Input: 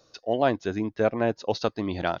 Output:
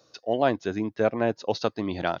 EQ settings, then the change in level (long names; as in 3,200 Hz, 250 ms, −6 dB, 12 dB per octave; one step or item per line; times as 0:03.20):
high-pass filter 93 Hz
0.0 dB